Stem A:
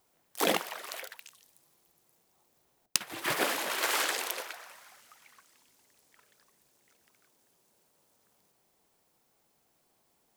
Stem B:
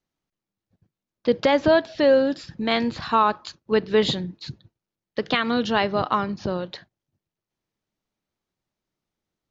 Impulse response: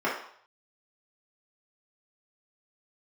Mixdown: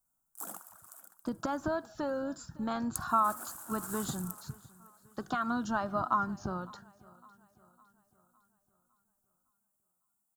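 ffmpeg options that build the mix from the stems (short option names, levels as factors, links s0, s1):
-filter_complex "[0:a]volume=0.141,asplit=2[s0][s1];[s1]volume=0.075[s2];[1:a]acompressor=threshold=0.0794:ratio=2,flanger=delay=1.9:depth=1.4:regen=52:speed=0.43:shape=triangular,volume=0.944,asplit=2[s3][s4];[s4]volume=0.0708[s5];[s2][s5]amix=inputs=2:normalize=0,aecho=0:1:557|1114|1671|2228|2785|3342|3899:1|0.48|0.23|0.111|0.0531|0.0255|0.0122[s6];[s0][s3][s6]amix=inputs=3:normalize=0,firequalizer=gain_entry='entry(230,0);entry(450,-14);entry(700,-2);entry(1400,4);entry(2000,-21);entry(4200,-13);entry(7600,11)':delay=0.05:min_phase=1"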